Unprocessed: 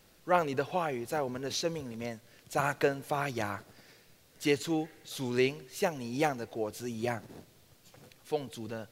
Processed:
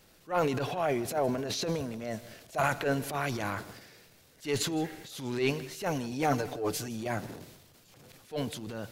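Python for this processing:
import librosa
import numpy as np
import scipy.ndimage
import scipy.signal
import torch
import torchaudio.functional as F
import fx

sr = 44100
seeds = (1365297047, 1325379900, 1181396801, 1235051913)

p1 = fx.diode_clip(x, sr, knee_db=-14.5)
p2 = fx.peak_eq(p1, sr, hz=650.0, db=10.5, octaves=0.25, at=(0.78, 2.63))
p3 = fx.comb(p2, sr, ms=6.8, depth=0.83, at=(6.11, 6.88))
p4 = fx.transient(p3, sr, attack_db=-11, sustain_db=8)
p5 = p4 + fx.echo_single(p4, sr, ms=161, db=-19.5, dry=0)
y = p5 * 10.0 ** (1.5 / 20.0)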